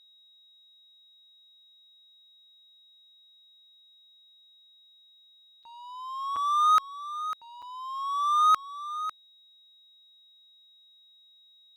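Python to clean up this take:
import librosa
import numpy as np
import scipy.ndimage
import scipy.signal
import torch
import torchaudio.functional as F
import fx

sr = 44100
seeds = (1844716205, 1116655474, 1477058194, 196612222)

y = fx.notch(x, sr, hz=3800.0, q=30.0)
y = fx.fix_interpolate(y, sr, at_s=(5.63, 6.36, 7.62), length_ms=5.3)
y = fx.fix_echo_inverse(y, sr, delay_ms=549, level_db=-12.0)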